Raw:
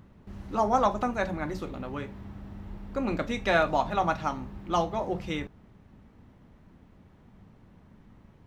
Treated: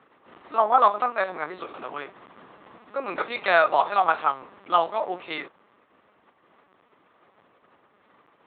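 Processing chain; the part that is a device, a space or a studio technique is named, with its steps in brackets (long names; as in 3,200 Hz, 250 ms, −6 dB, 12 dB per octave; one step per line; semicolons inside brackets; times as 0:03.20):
talking toy (linear-prediction vocoder at 8 kHz pitch kept; high-pass filter 550 Hz 12 dB per octave; parametric band 1,200 Hz +5.5 dB 0.29 octaves)
level +6 dB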